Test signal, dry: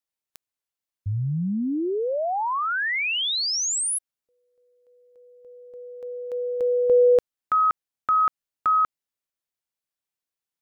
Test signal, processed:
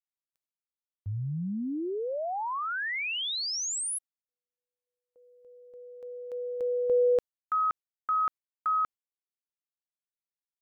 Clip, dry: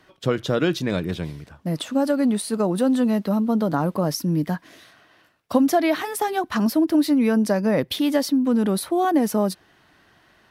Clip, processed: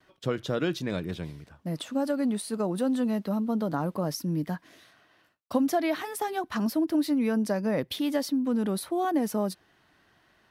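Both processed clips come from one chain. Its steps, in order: gate with hold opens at -50 dBFS, closes at -54 dBFS, hold 46 ms, range -28 dB; gain -7 dB

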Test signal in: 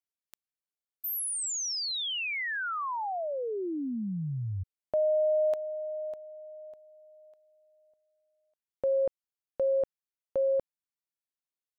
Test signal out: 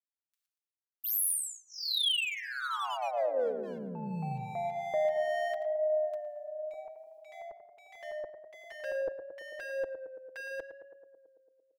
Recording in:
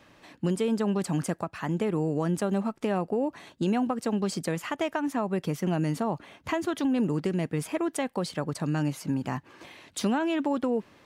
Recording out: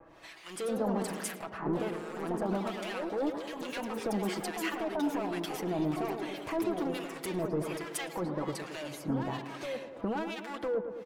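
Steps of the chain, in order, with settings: gate with hold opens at -54 dBFS, range -35 dB; bell 170 Hz -12.5 dB 1.1 oct; comb 6.1 ms, depth 67%; dynamic EQ 6900 Hz, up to -7 dB, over -50 dBFS, Q 0.97; limiter -24.5 dBFS; hard clip -31 dBFS; harmonic tremolo 1.2 Hz, depth 100%, crossover 1200 Hz; tape echo 0.111 s, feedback 84%, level -7 dB, low-pass 1200 Hz; echoes that change speed 0.153 s, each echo +2 st, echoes 3, each echo -6 dB; gain +4.5 dB

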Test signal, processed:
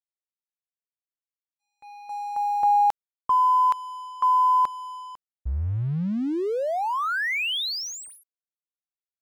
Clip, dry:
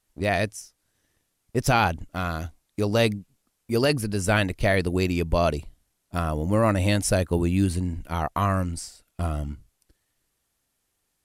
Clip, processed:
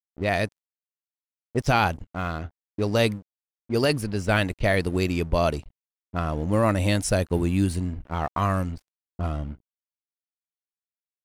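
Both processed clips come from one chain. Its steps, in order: low-pass opened by the level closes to 450 Hz, open at -19 dBFS; crossover distortion -45.5 dBFS

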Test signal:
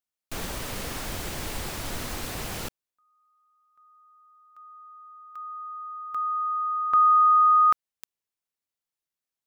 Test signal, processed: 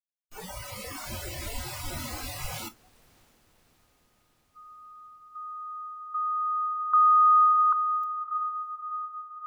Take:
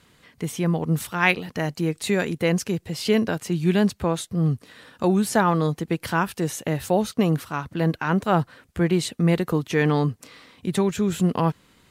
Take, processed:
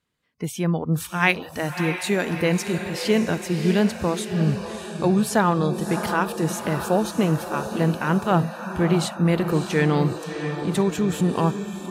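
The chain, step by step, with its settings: diffused feedback echo 0.632 s, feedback 63%, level -8 dB; spectral noise reduction 21 dB

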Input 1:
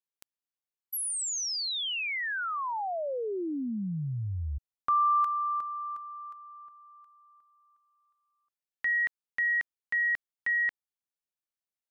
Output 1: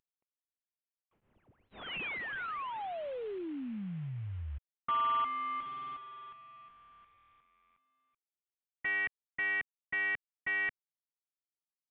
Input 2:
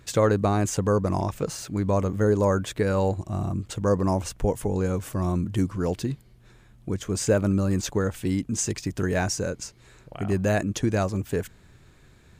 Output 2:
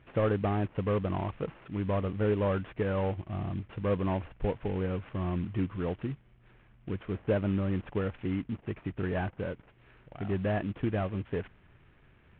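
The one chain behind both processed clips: CVSD 16 kbps; gain -6 dB

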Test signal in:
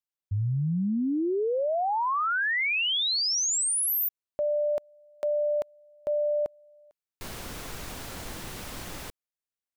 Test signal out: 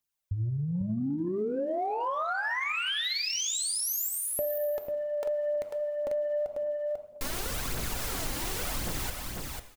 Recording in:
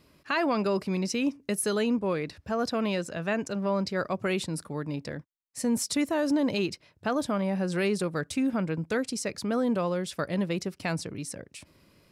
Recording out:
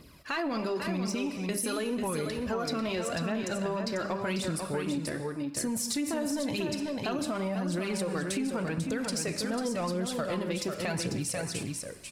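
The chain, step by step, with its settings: non-linear reverb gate 0.36 s falling, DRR 11.5 dB; in parallel at -5 dB: soft clip -25 dBFS; on the sum: high shelf 7800 Hz +4.5 dB; phaser 0.9 Hz, delay 3.8 ms, feedback 53%; de-hum 101.8 Hz, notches 36; limiter -20 dBFS; on a send: echo 0.494 s -6 dB; on the sum: compressor, threshold -28 dBFS

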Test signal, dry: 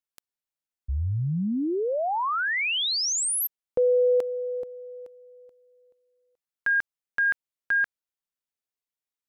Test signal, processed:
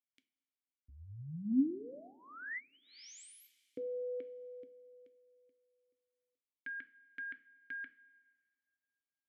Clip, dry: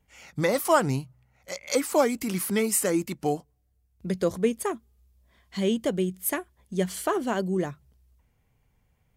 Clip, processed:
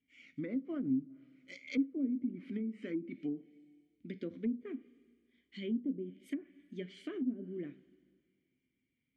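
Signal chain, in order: vowel filter i; two-slope reverb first 0.33 s, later 2 s, from -18 dB, DRR 10 dB; treble ducked by the level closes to 360 Hz, closed at -32.5 dBFS; gain +1 dB

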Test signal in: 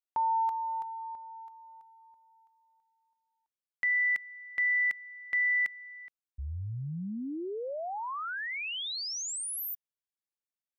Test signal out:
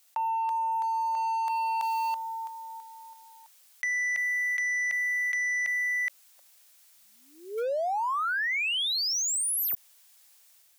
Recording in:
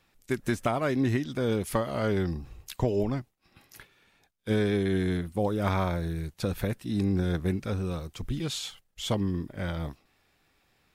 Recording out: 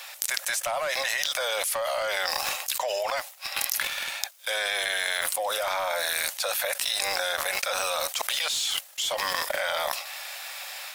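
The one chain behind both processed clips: Chebyshev high-pass 550 Hz, order 6; high shelf 3300 Hz +10.5 dB; AGC gain up to 4 dB; sample leveller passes 2; fast leveller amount 100%; gain -12 dB

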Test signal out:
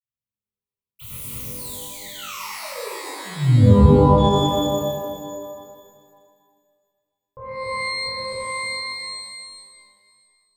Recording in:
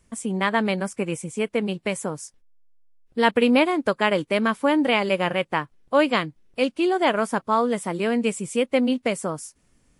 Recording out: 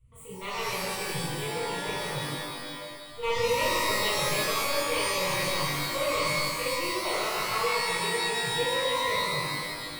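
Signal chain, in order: self-modulated delay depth 0.22 ms; resonant low shelf 180 Hz +13.5 dB, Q 3; fixed phaser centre 1100 Hz, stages 8; shimmer reverb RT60 2 s, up +12 st, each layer -2 dB, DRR -10.5 dB; gain -15.5 dB

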